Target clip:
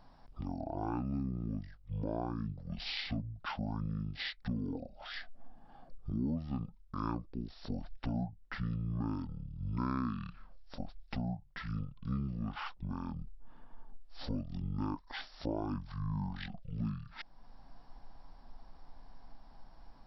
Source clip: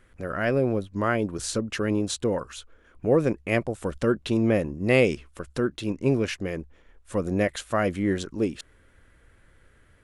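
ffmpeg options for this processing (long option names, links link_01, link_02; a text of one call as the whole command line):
ffmpeg -i in.wav -af "asubboost=boost=4:cutoff=57,acompressor=threshold=-40dB:ratio=2.5,asetrate=22050,aresample=44100" out.wav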